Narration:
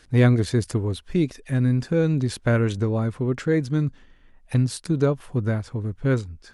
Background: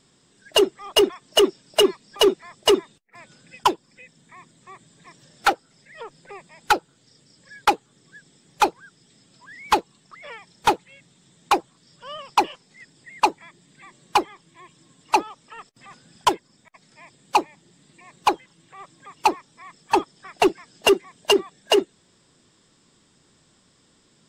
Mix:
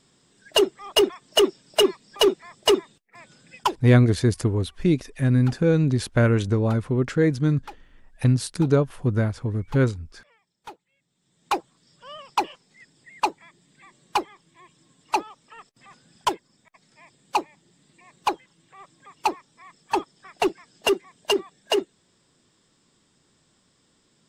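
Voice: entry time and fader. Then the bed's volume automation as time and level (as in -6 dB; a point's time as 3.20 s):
3.70 s, +1.5 dB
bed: 3.57 s -1.5 dB
4.32 s -23 dB
10.93 s -23 dB
11.55 s -4.5 dB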